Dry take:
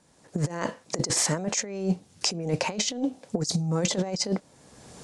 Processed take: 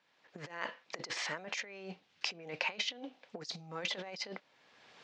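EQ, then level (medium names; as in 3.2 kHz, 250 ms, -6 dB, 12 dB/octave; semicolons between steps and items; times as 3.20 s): band-pass filter 2.7 kHz, Q 1.2; distance through air 190 m; +2.0 dB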